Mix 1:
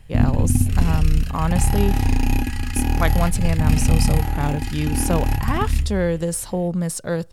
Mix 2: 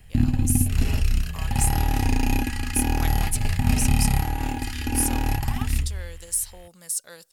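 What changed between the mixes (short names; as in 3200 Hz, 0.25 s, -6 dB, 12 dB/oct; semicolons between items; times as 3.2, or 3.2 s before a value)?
speech: add pre-emphasis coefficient 0.97; master: add tone controls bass -4 dB, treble +1 dB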